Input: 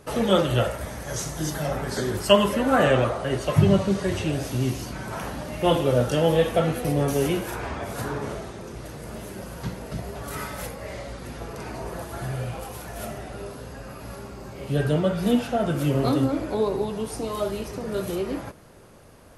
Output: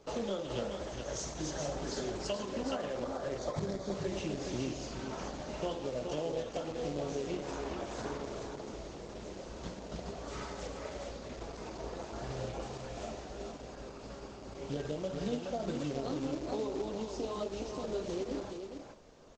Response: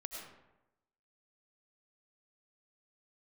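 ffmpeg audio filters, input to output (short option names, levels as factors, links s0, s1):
-filter_complex "[0:a]asettb=1/sr,asplit=3[s0][s1][s2];[s0]atrim=end=12.274[s3];[s1]atrim=start=12.27:end=12.78,asetpts=PTS-STARTPTS,afade=t=in:d=0.004:c=qsin,afade=t=out:st=0.506:d=0.004:c=qsin,asplit=2[s4][s5];[s5]adelay=32,volume=0.596[s6];[s4][s6]amix=inputs=2:normalize=0,atrim=end_sample=22491[s7];[s2]atrim=start=12.776[s8];[s3][s7]acrossfade=d=0.004:c1=hsin:c2=qsin[s9];[s9][s8]acrossfade=d=0.004:c1=qsin:c2=hsin,acrossover=split=870[s10][s11];[s10]acrusher=bits=3:mode=log:mix=0:aa=0.000001[s12];[s12][s11]amix=inputs=2:normalize=0,asplit=3[s13][s14][s15];[s13]afade=t=out:st=2.95:d=0.02[s16];[s14]asuperstop=centerf=2800:order=4:qfactor=3.4,afade=t=in:st=2.95:d=0.02,afade=t=out:st=3.93:d=0.02[s17];[s15]afade=t=in:st=3.93:d=0.02[s18];[s16][s17][s18]amix=inputs=3:normalize=0,equalizer=f=110:w=0.88:g=-12.5,acompressor=threshold=0.0447:ratio=12,aresample=16000,aresample=44100,equalizer=f=1700:w=0.84:g=-7.5,aecho=1:1:423:0.531,volume=0.668" -ar 48000 -c:a libopus -b:a 16k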